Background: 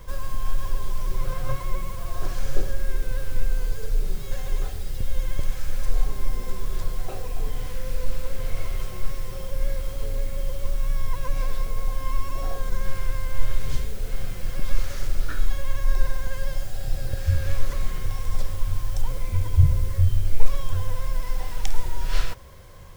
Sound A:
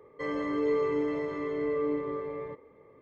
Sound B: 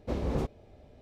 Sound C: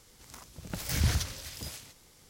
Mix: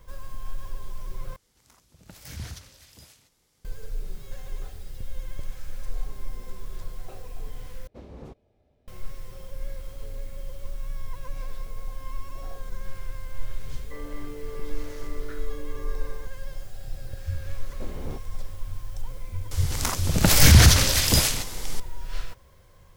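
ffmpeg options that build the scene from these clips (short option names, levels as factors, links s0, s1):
-filter_complex "[3:a]asplit=2[s0][s1];[2:a]asplit=2[s2][s3];[0:a]volume=0.355[s4];[1:a]acompressor=threshold=0.0316:ratio=6:attack=3.2:release=140:knee=1:detection=peak[s5];[s1]alimiter=level_in=15.8:limit=0.891:release=50:level=0:latency=1[s6];[s4]asplit=3[s7][s8][s9];[s7]atrim=end=1.364[s10];[s0]atrim=end=2.29,asetpts=PTS-STARTPTS,volume=0.316[s11];[s8]atrim=start=3.646:end=7.874[s12];[s2]atrim=end=1.01,asetpts=PTS-STARTPTS,volume=0.237[s13];[s9]atrim=start=8.876[s14];[s5]atrim=end=3.01,asetpts=PTS-STARTPTS,volume=0.447,afade=t=in:d=0.004:c=hsin,afade=t=out:st=3.006:d=0.004:c=hsin,adelay=13710[s15];[s3]atrim=end=1.01,asetpts=PTS-STARTPTS,volume=0.447,afade=t=in:d=0.004:c=hsin,afade=t=out:st=1.006:d=0.004:c=hsin,adelay=17720[s16];[s6]atrim=end=2.29,asetpts=PTS-STARTPTS,volume=0.708,afade=t=in:d=0.004:c=hsin,afade=t=out:st=2.286:d=0.004:c=hsin,adelay=19510[s17];[s10][s11]acrossfade=d=0.004:c1=hsin:c2=hsin[s18];[s18][s12]acrossfade=d=0.004:c1=hsin:c2=hsin[s19];[s19][s13]acrossfade=d=0.004:c1=hsin:c2=hsin[s20];[s20][s14]acrossfade=d=0.004:c1=hsin:c2=hsin[s21];[s21][s15][s16][s17]amix=inputs=4:normalize=0"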